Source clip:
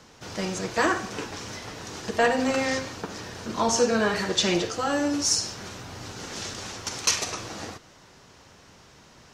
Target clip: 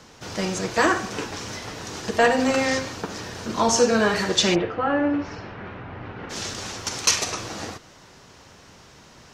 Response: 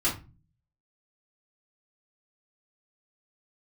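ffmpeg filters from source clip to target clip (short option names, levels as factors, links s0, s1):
-filter_complex "[0:a]asplit=3[s0][s1][s2];[s0]afade=t=out:st=4.54:d=0.02[s3];[s1]lowpass=f=2400:w=0.5412,lowpass=f=2400:w=1.3066,afade=t=in:st=4.54:d=0.02,afade=t=out:st=6.29:d=0.02[s4];[s2]afade=t=in:st=6.29:d=0.02[s5];[s3][s4][s5]amix=inputs=3:normalize=0,volume=1.5"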